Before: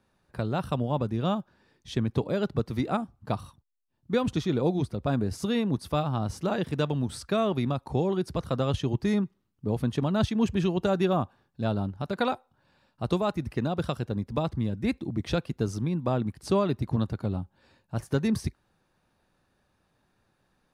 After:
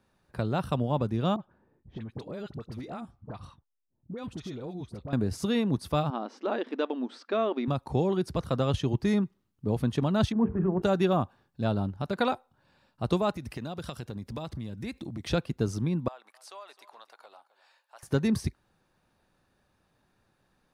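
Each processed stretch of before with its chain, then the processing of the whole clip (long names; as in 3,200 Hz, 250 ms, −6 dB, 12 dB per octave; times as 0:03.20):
0:01.36–0:05.13: low-pass that shuts in the quiet parts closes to 600 Hz, open at −24.5 dBFS + downward compressor, threshold −35 dBFS + all-pass dispersion highs, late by 43 ms, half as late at 1,100 Hz
0:06.10–0:07.68: linear-phase brick-wall high-pass 220 Hz + high-frequency loss of the air 200 metres
0:10.32–0:10.82: linear delta modulator 64 kbit/s, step −44 dBFS + inverse Chebyshev low-pass filter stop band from 4,500 Hz, stop band 60 dB + mains-hum notches 50/100/150/200/250/300/350/400/450 Hz
0:13.36–0:15.30: high-shelf EQ 2,200 Hz +8 dB + downward compressor 4 to 1, threshold −34 dBFS
0:16.08–0:18.03: high-pass filter 690 Hz 24 dB per octave + downward compressor 2 to 1, threshold −53 dBFS + single-tap delay 261 ms −17 dB
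whole clip: no processing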